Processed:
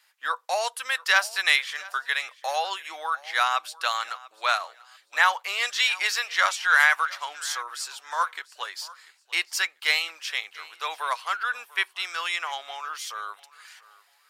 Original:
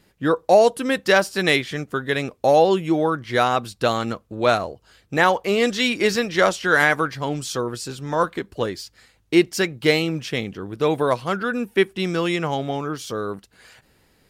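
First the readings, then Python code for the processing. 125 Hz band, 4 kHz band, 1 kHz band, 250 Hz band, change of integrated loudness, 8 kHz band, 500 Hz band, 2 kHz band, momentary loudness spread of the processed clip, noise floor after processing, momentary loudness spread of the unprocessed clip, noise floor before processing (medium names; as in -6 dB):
under -40 dB, 0.0 dB, -4.0 dB, under -35 dB, -4.5 dB, 0.0 dB, -19.0 dB, 0.0 dB, 13 LU, -63 dBFS, 11 LU, -61 dBFS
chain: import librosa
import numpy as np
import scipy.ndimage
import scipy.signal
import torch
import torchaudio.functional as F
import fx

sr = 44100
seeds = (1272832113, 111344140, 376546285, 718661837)

p1 = scipy.signal.sosfilt(scipy.signal.butter(4, 970.0, 'highpass', fs=sr, output='sos'), x)
y = p1 + fx.echo_feedback(p1, sr, ms=692, feedback_pct=26, wet_db=-21, dry=0)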